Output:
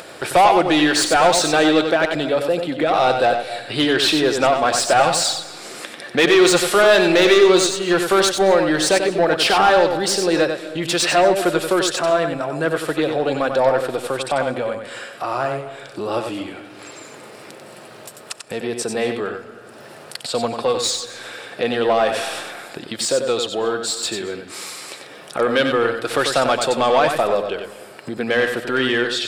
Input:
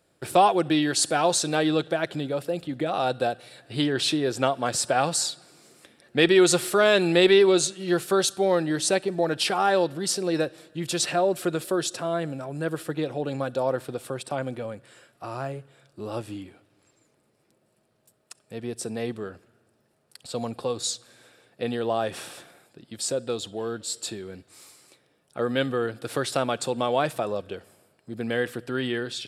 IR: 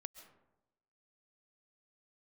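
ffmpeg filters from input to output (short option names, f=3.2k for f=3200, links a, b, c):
-filter_complex "[0:a]asplit=2[a][b];[b]highpass=f=720:p=1,volume=20dB,asoftclip=type=tanh:threshold=-5dB[c];[a][c]amix=inputs=2:normalize=0,lowpass=f=3.5k:p=1,volume=-6dB,acompressor=mode=upward:threshold=-23dB:ratio=2.5,asplit=2[d][e];[1:a]atrim=start_sample=2205,adelay=93[f];[e][f]afir=irnorm=-1:irlink=0,volume=-1dB[g];[d][g]amix=inputs=2:normalize=0"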